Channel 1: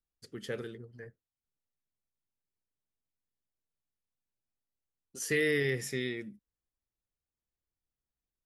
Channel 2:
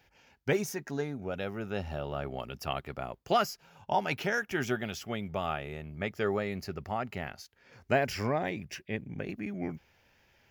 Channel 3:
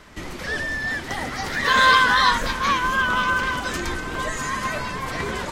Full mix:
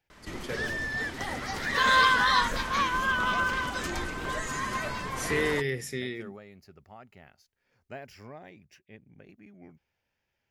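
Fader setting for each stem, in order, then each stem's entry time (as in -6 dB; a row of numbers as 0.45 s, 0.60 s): +0.5 dB, -15.5 dB, -6.0 dB; 0.00 s, 0.00 s, 0.10 s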